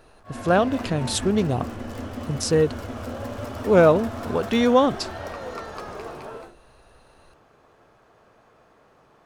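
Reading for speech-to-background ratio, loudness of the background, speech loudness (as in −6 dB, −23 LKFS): 12.5 dB, −34.0 LKFS, −21.5 LKFS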